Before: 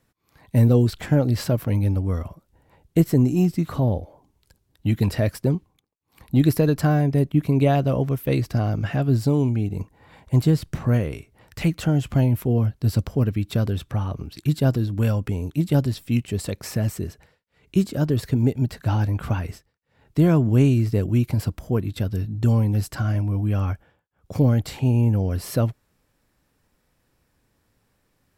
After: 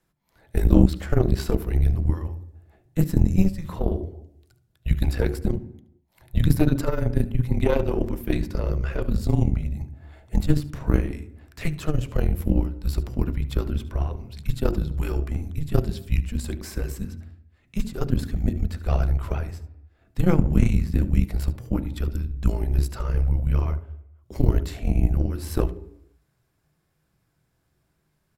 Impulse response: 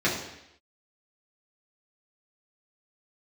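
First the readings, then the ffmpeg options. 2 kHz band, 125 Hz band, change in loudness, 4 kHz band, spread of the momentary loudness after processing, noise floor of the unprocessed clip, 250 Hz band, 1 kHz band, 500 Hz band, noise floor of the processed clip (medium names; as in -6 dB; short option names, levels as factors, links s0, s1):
-3.0 dB, -4.5 dB, -3.0 dB, -4.0 dB, 12 LU, -69 dBFS, -4.0 dB, -5.0 dB, -3.5 dB, -71 dBFS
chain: -filter_complex "[0:a]afreqshift=-170,aecho=1:1:73:0.15,asplit=2[s0][s1];[1:a]atrim=start_sample=2205,lowpass=2400,lowshelf=f=490:g=9[s2];[s1][s2]afir=irnorm=-1:irlink=0,volume=0.0668[s3];[s0][s3]amix=inputs=2:normalize=0,aeval=exprs='0.944*(cos(1*acos(clip(val(0)/0.944,-1,1)))-cos(1*PI/2))+0.188*(cos(4*acos(clip(val(0)/0.944,-1,1)))-cos(4*PI/2))+0.0376*(cos(7*acos(clip(val(0)/0.944,-1,1)))-cos(7*PI/2))':c=same,volume=0.794"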